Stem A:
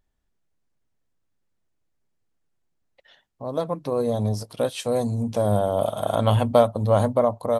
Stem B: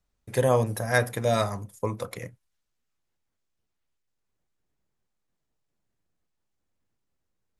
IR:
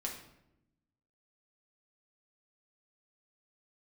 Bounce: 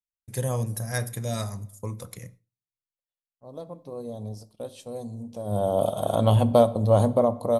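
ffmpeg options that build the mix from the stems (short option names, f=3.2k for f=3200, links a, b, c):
-filter_complex "[0:a]equalizer=f=1.7k:w=0.96:g=-10,volume=-1dB,afade=t=in:st=5.45:d=0.24:silence=0.237137,asplit=2[a][b];[b]volume=-9.5dB[c];[1:a]bass=f=250:g=11,treble=f=4k:g=13,volume=-11.5dB,asplit=2[d][e];[e]volume=-13dB[f];[2:a]atrim=start_sample=2205[g];[c][f]amix=inputs=2:normalize=0[h];[h][g]afir=irnorm=-1:irlink=0[i];[a][d][i]amix=inputs=3:normalize=0,agate=range=-33dB:threshold=-44dB:ratio=3:detection=peak"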